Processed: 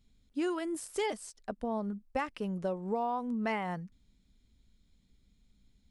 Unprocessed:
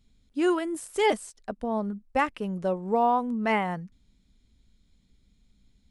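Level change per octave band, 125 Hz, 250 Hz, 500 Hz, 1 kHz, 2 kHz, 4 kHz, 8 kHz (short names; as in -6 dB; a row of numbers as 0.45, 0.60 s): -4.5, -6.0, -8.0, -9.5, -9.0, -7.5, -3.5 dB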